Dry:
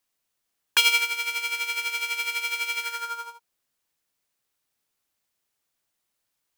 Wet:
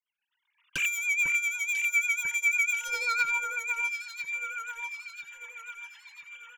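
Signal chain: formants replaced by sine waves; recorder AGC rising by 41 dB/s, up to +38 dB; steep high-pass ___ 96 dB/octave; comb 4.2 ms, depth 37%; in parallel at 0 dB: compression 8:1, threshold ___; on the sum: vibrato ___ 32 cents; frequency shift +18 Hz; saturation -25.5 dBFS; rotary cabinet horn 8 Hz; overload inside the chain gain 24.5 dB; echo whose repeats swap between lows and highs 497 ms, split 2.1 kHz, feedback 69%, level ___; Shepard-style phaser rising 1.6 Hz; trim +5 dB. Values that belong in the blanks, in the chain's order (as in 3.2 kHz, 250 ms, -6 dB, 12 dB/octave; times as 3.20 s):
890 Hz, -36 dBFS, 6 Hz, -4 dB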